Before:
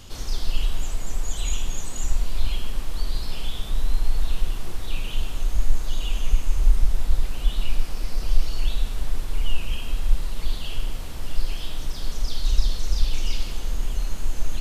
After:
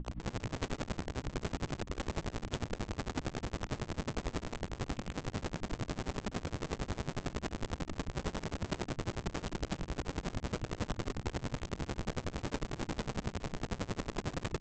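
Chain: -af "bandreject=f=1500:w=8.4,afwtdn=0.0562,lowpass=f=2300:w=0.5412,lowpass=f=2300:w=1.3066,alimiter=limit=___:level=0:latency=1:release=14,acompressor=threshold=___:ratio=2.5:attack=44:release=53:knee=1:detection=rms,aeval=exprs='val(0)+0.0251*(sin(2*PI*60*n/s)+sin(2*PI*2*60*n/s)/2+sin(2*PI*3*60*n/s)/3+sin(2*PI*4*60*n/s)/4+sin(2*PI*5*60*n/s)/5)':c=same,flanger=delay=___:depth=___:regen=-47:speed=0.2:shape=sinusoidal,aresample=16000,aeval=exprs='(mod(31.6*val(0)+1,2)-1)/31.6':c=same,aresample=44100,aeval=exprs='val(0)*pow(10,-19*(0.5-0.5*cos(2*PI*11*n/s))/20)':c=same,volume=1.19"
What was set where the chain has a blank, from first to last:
0.335, 0.0794, 5.3, 8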